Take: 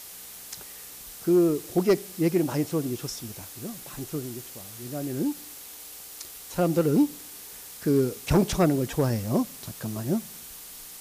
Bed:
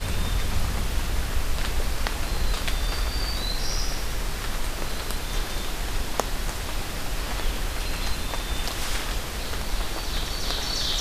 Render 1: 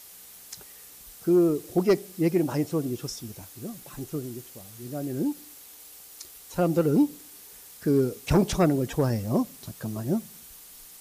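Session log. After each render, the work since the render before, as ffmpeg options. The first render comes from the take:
-af "afftdn=nr=6:nf=-43"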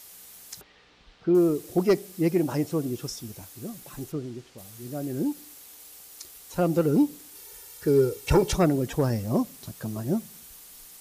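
-filter_complex "[0:a]asettb=1/sr,asplit=3[s0][s1][s2];[s0]atrim=end=0.614[s3];[s1]atrim=start=0.61:end=1.35,asetpts=PTS-STARTPTS,afade=t=in:d=0.004:c=qsin,afade=t=out:st=0.736:d=0.004:c=qsin,lowpass=f=3900:w=0.5412,lowpass=f=3900:w=1.3066[s4];[s2]atrim=start=1.346[s5];[s3][s4]acrossfade=d=0.004:c1=hsin:c2=qsin[s6];[s6][s5]acrossfade=d=0.004:c1=qsin:c2=hsin,asplit=3[s7][s8][s9];[s7]afade=t=out:st=4.11:d=0.02[s10];[s8]lowpass=4600,afade=t=in:st=4.11:d=0.02,afade=t=out:st=4.57:d=0.02[s11];[s9]afade=t=in:st=4.57:d=0.02[s12];[s10][s11][s12]amix=inputs=3:normalize=0,asettb=1/sr,asplit=3[s13][s14][s15];[s13]atrim=end=7.354[s16];[s14]atrim=start=7.35:end=8.55,asetpts=PTS-STARTPTS,afade=t=in:d=0.004:c=qsin,afade=t=out:st=1.196:d=0.004:c=qsin,aecho=1:1:2.2:0.72,atrim=end_sample=52920[s17];[s15]atrim=start=8.546[s18];[s16][s17]acrossfade=d=0.004:c1=hsin:c2=qsin[s19];[s19][s18]acrossfade=d=0.004:c1=qsin:c2=hsin"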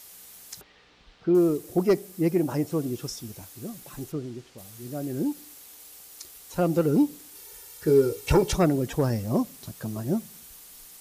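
-filter_complex "[0:a]asettb=1/sr,asplit=3[s0][s1][s2];[s0]atrim=end=1.574[s3];[s1]atrim=start=1.57:end=2.72,asetpts=PTS-STARTPTS,afade=t=in:d=0.004:c=qsin,afade=t=out:st=1.146:d=0.004:c=qsin,equalizer=f=3800:w=0.63:g=-3.5[s4];[s2]atrim=start=2.716[s5];[s3][s4]acrossfade=d=0.004:c1=hsin:c2=qsin[s6];[s6][s5]acrossfade=d=0.004:c1=qsin:c2=hsin,asettb=1/sr,asplit=3[s7][s8][s9];[s7]atrim=end=7.844[s10];[s8]atrim=start=7.84:end=8.32,asetpts=PTS-STARTPTS,afade=t=in:d=0.004:c=qsin,afade=t=out:st=0.476:d=0.004:c=qsin,asplit=2[s11][s12];[s12]adelay=19,volume=0.473[s13];[s11][s13]amix=inputs=2:normalize=0,atrim=end_sample=21168[s14];[s9]atrim=start=8.316[s15];[s10][s14]acrossfade=d=0.004:c1=hsin:c2=qsin[s16];[s16][s15]acrossfade=d=0.004:c1=qsin:c2=hsin"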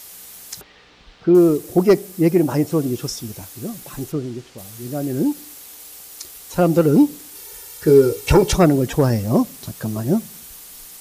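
-af "volume=2.51,alimiter=limit=0.708:level=0:latency=1"

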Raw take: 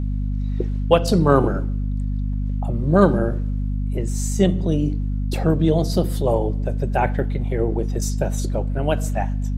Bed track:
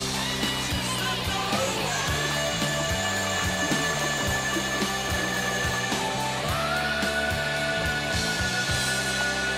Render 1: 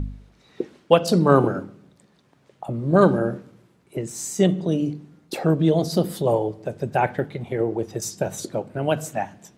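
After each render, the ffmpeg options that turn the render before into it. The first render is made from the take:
-af "bandreject=f=50:t=h:w=4,bandreject=f=100:t=h:w=4,bandreject=f=150:t=h:w=4,bandreject=f=200:t=h:w=4,bandreject=f=250:t=h:w=4"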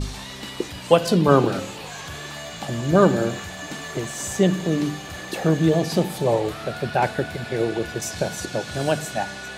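-filter_complex "[1:a]volume=0.376[s0];[0:a][s0]amix=inputs=2:normalize=0"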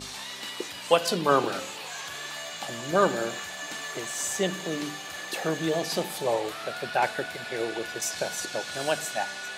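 -af "highpass=f=910:p=1"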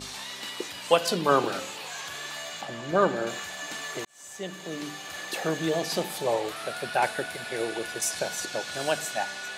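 -filter_complex "[0:a]asettb=1/sr,asplit=3[s0][s1][s2];[s0]atrim=end=2.614[s3];[s1]atrim=start=2.61:end=3.27,asetpts=PTS-STARTPTS,afade=t=in:d=0.004:c=qsin,afade=t=out:st=0.656:d=0.004:c=qsin,lowpass=f=2600:p=1[s4];[s2]atrim=start=3.266[s5];[s3][s4]acrossfade=d=0.004:c1=hsin:c2=qsin[s6];[s6][s5]acrossfade=d=0.004:c1=qsin:c2=hsin,asettb=1/sr,asplit=3[s7][s8][s9];[s7]atrim=end=6.564[s10];[s8]atrim=start=6.56:end=8.19,asetpts=PTS-STARTPTS,afade=t=in:d=0.004:c=qsin,afade=t=out:st=1.626:d=0.004:c=qsin,equalizer=f=9900:w=2.6:g=9[s11];[s9]atrim=start=8.186[s12];[s10][s11]acrossfade=d=0.004:c1=hsin:c2=qsin[s13];[s13][s12]acrossfade=d=0.004:c1=qsin:c2=hsin,asplit=2[s14][s15];[s14]atrim=end=4.05,asetpts=PTS-STARTPTS,afade=t=out:st=4.046:d=0.004:c=hsin[s16];[s15]atrim=start=4.05,asetpts=PTS-STARTPTS,afade=t=in:d=1.12[s17];[s16][s17]concat=n=2:v=0:a=1"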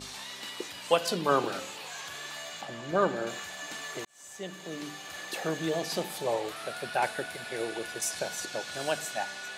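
-af "volume=0.668"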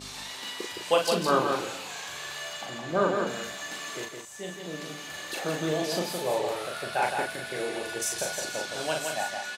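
-filter_complex "[0:a]asplit=2[s0][s1];[s1]adelay=39,volume=0.668[s2];[s0][s2]amix=inputs=2:normalize=0,asplit=2[s3][s4];[s4]aecho=0:1:165:0.562[s5];[s3][s5]amix=inputs=2:normalize=0"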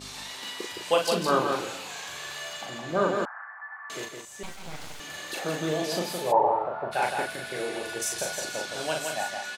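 -filter_complex "[0:a]asettb=1/sr,asplit=3[s0][s1][s2];[s0]atrim=end=3.254[s3];[s1]atrim=start=3.25:end=3.9,asetpts=PTS-STARTPTS,afade=t=in:d=0.004:c=qsin,afade=t=out:st=0.646:d=0.004:c=qsin,asuperpass=centerf=1200:order=12:qfactor=1.1[s4];[s2]atrim=start=3.896[s5];[s3][s4]acrossfade=d=0.004:c1=hsin:c2=qsin[s6];[s6][s5]acrossfade=d=0.004:c1=qsin:c2=hsin,asettb=1/sr,asplit=3[s7][s8][s9];[s7]atrim=end=4.434[s10];[s8]atrim=start=4.43:end=5,asetpts=PTS-STARTPTS,afade=t=in:d=0.004:c=qsin,afade=t=out:st=0.566:d=0.004:c=qsin,aeval=exprs='abs(val(0))':c=same[s11];[s9]atrim=start=4.996[s12];[s10][s11]acrossfade=d=0.004:c1=hsin:c2=qsin[s13];[s13][s12]acrossfade=d=0.004:c1=qsin:c2=hsin,asplit=3[s14][s15][s16];[s14]afade=t=out:st=6.31:d=0.02[s17];[s15]lowpass=f=900:t=q:w=6,afade=t=in:st=6.31:d=0.02,afade=t=out:st=6.91:d=0.02[s18];[s16]afade=t=in:st=6.91:d=0.02[s19];[s17][s18][s19]amix=inputs=3:normalize=0"

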